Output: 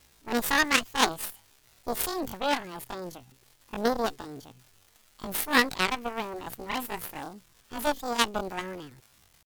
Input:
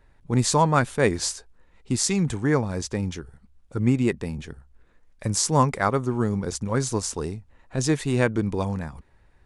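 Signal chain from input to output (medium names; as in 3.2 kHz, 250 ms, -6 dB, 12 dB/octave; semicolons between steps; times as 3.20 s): crackle 530 per s -35 dBFS; Chebyshev shaper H 3 -12 dB, 4 -27 dB, 6 -18 dB, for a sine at -5 dBFS; pitch shift +11 st; trim +2.5 dB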